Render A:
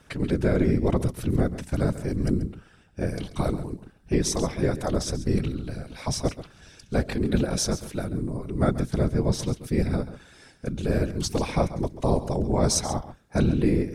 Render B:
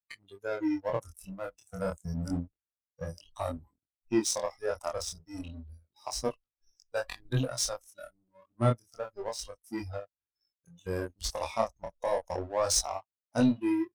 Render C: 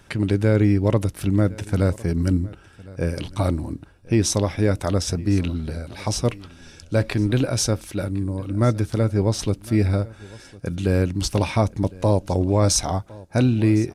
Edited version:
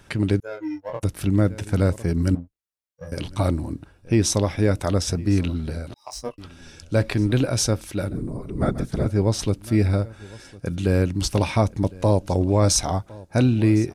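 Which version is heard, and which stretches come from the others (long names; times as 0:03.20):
C
0:00.40–0:01.03: punch in from B
0:02.35–0:03.12: punch in from B
0:05.94–0:06.38: punch in from B
0:08.10–0:09.06: punch in from A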